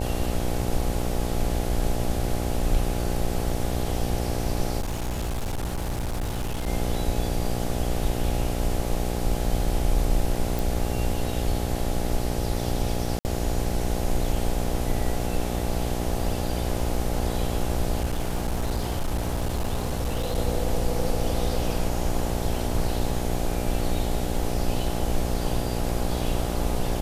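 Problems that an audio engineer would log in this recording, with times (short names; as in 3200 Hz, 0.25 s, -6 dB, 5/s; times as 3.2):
buzz 60 Hz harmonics 14 -29 dBFS
4.8–6.67 clipped -24.5 dBFS
10.59 pop
13.19–13.25 gap 59 ms
18.01–20.38 clipped -21.5 dBFS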